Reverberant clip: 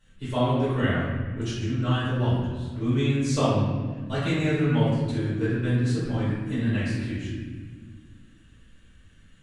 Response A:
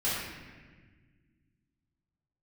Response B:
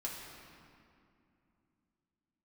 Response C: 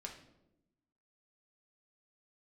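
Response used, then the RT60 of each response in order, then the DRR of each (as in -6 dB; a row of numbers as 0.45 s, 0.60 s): A; 1.5 s, 2.6 s, 0.90 s; -12.0 dB, -3.5 dB, 0.5 dB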